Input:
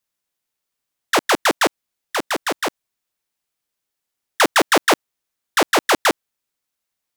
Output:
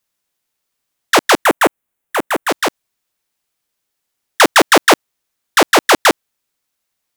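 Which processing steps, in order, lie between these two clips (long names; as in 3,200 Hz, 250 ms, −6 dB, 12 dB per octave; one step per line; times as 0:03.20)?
0:01.44–0:02.49: parametric band 4,800 Hz −12.5 dB 1.1 octaves
level +6 dB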